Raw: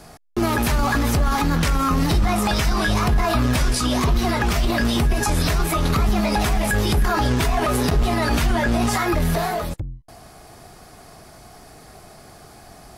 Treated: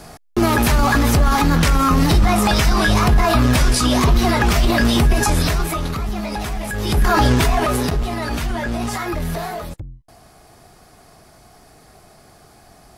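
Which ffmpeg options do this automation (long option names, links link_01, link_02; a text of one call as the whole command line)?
ffmpeg -i in.wav -af "volume=15.5dB,afade=type=out:start_time=5.19:duration=0.75:silence=0.334965,afade=type=in:start_time=6.77:duration=0.41:silence=0.281838,afade=type=out:start_time=7.18:duration=0.9:silence=0.334965" out.wav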